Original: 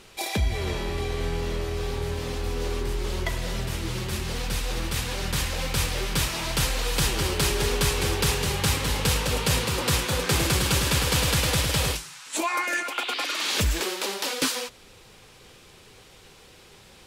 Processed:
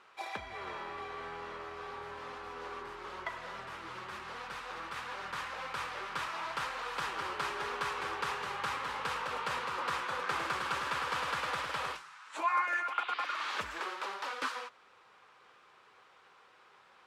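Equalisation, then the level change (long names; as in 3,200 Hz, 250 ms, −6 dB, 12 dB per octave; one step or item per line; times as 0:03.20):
resonant band-pass 1,200 Hz, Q 2.2
0.0 dB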